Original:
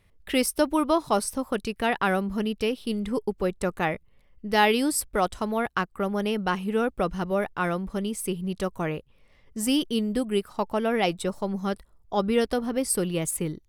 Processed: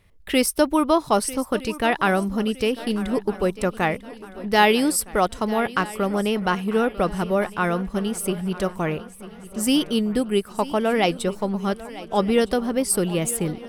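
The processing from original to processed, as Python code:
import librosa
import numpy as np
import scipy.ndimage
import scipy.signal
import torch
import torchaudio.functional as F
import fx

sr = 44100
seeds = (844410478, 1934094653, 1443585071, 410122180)

y = fx.echo_swing(x, sr, ms=1262, ratio=3, feedback_pct=41, wet_db=-17.0)
y = y * 10.0 ** (4.0 / 20.0)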